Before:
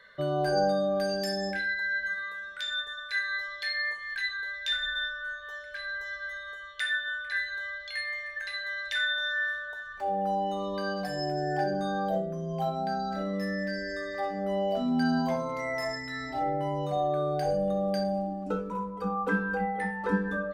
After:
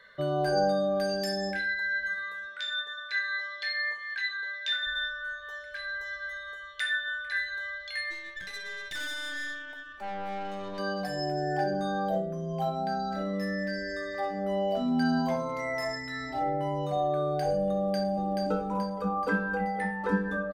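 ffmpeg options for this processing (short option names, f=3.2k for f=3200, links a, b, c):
-filter_complex "[0:a]asettb=1/sr,asplit=3[a][b][c];[a]atrim=end=2.474[d];[b]atrim=start=2.47:end=4.87,asetpts=PTS-STARTPTS,afade=t=in:d=0.004:c=qsin,afade=t=out:st=2.396:d=0.004:c=qsin,highpass=230,lowpass=6k[e];[c]atrim=start=4.866[f];[d][e]acrossfade=d=0.004:c1=hsin:c2=qsin[g];[g][f]acrossfade=d=0.004:c1=qsin:c2=hsin,asplit=3[h][i][j];[h]afade=t=out:st=8.1:d=0.02[k];[i]aeval=exprs='(tanh(44.7*val(0)+0.7)-tanh(0.7))/44.7':c=same,afade=t=in:st=8.1:d=0.02,afade=t=out:st=10.78:d=0.02[l];[j]afade=t=in:st=10.78:d=0.02[m];[k][l][m]amix=inputs=3:normalize=0,asplit=2[n][o];[o]afade=t=in:st=17.74:d=0.01,afade=t=out:st=18.39:d=0.01,aecho=0:1:430|860|1290|1720|2150|2580|3010|3440:0.707946|0.38937|0.214154|0.117784|0.0647815|0.0356298|0.0195964|0.010778[p];[n][p]amix=inputs=2:normalize=0"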